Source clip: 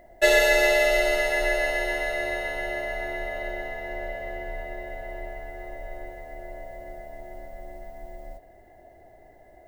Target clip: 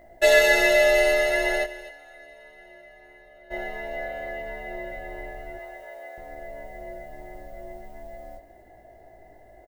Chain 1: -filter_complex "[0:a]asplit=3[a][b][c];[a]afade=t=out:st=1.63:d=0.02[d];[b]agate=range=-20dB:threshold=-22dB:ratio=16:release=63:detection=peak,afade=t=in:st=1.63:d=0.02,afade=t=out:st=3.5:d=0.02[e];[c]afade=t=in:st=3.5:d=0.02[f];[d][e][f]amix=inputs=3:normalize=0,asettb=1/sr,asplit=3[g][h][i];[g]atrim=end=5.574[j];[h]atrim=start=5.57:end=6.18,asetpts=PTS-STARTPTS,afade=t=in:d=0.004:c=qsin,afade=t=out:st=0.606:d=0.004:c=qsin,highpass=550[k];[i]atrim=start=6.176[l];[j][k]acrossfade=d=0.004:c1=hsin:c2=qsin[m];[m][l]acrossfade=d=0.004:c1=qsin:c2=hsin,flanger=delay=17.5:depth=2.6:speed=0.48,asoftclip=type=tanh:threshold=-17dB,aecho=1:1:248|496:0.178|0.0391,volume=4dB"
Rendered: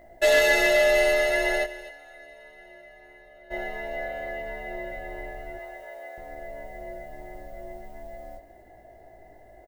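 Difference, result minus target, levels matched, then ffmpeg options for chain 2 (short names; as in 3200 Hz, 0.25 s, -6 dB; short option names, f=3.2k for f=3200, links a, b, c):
soft clip: distortion +18 dB
-filter_complex "[0:a]asplit=3[a][b][c];[a]afade=t=out:st=1.63:d=0.02[d];[b]agate=range=-20dB:threshold=-22dB:ratio=16:release=63:detection=peak,afade=t=in:st=1.63:d=0.02,afade=t=out:st=3.5:d=0.02[e];[c]afade=t=in:st=3.5:d=0.02[f];[d][e][f]amix=inputs=3:normalize=0,asettb=1/sr,asplit=3[g][h][i];[g]atrim=end=5.574[j];[h]atrim=start=5.57:end=6.18,asetpts=PTS-STARTPTS,afade=t=in:d=0.004:c=qsin,afade=t=out:st=0.606:d=0.004:c=qsin,highpass=550[k];[i]atrim=start=6.176[l];[j][k]acrossfade=d=0.004:c1=hsin:c2=qsin[m];[m][l]acrossfade=d=0.004:c1=qsin:c2=hsin,flanger=delay=17.5:depth=2.6:speed=0.48,asoftclip=type=tanh:threshold=-5.5dB,aecho=1:1:248|496:0.178|0.0391,volume=4dB"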